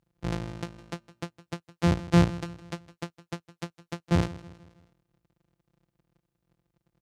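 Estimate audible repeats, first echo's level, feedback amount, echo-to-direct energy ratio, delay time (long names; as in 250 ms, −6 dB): 3, −18.0 dB, 48%, −17.0 dB, 160 ms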